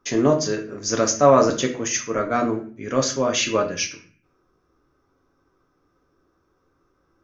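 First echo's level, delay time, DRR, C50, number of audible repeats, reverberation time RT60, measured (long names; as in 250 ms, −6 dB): no echo audible, no echo audible, 2.5 dB, 10.5 dB, no echo audible, 0.45 s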